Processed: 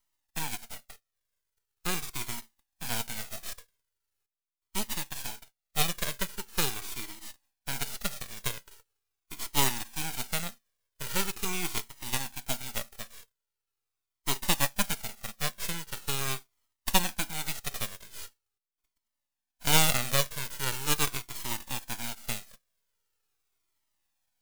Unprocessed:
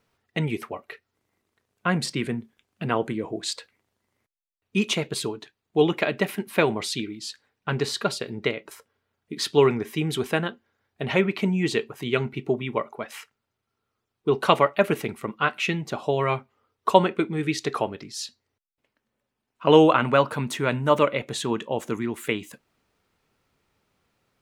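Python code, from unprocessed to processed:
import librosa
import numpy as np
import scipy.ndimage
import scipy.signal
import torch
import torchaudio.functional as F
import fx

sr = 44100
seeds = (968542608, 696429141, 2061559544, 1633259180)

y = fx.envelope_flatten(x, sr, power=0.1)
y = np.maximum(y, 0.0)
y = fx.comb_cascade(y, sr, direction='falling', hz=0.42)
y = F.gain(torch.from_numpy(y), -1.0).numpy()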